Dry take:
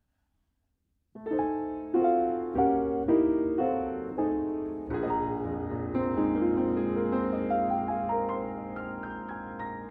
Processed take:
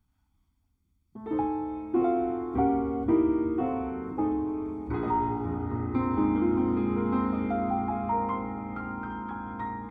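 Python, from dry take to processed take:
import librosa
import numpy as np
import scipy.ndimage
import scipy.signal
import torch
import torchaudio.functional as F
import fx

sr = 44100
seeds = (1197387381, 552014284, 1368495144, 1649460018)

y = x + 0.73 * np.pad(x, (int(0.9 * sr / 1000.0), 0))[:len(x)]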